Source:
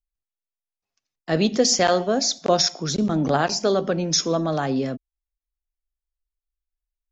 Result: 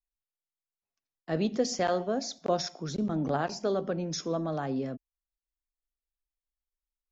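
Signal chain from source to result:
high-shelf EQ 2,400 Hz −9 dB
level −8 dB

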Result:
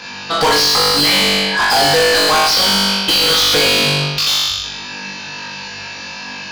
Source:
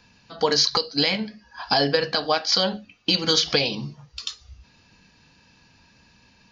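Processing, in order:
flutter between parallel walls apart 3.5 metres, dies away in 0.9 s
mid-hump overdrive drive 36 dB, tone 5,000 Hz, clips at −2 dBFS
level −3.5 dB

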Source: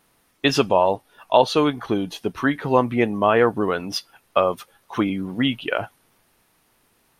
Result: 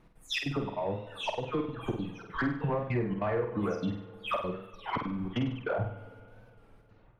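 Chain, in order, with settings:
every frequency bin delayed by itself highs early, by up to 299 ms
RIAA equalisation playback
reverb reduction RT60 0.96 s
high-shelf EQ 5,100 Hz −5.5 dB
downward compressor 16 to 1, threshold −26 dBFS, peak gain reduction 18 dB
gate pattern "x.xxx.xx" 196 BPM −24 dB
soft clipping −22.5 dBFS, distortion −18 dB
flutter between parallel walls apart 8.4 metres, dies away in 0.53 s
spring reverb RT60 3.2 s, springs 51/58 ms, chirp 40 ms, DRR 15.5 dB
wow of a warped record 33 1/3 rpm, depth 100 cents

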